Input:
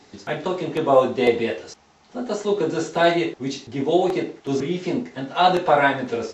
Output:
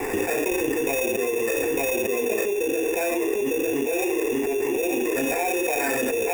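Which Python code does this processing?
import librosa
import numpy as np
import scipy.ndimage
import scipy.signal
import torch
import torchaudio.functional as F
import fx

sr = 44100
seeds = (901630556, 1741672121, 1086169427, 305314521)

y = fx.formant_cascade(x, sr, vowel='e')
y = fx.quant_companded(y, sr, bits=6)
y = fx.peak_eq(y, sr, hz=700.0, db=-9.5, octaves=2.4, at=(0.5, 1.01))
y = fx.highpass(y, sr, hz=360.0, slope=24, at=(4.2, 4.76))
y = fx.sample_hold(y, sr, seeds[0], rate_hz=3100.0, jitter_pct=0)
y = fx.fixed_phaser(y, sr, hz=850.0, stages=8)
y = y + 10.0 ** (-6.0 / 20.0) * np.pad(y, (int(903 * sr / 1000.0), 0))[:len(y)]
y = fx.env_flatten(y, sr, amount_pct=100)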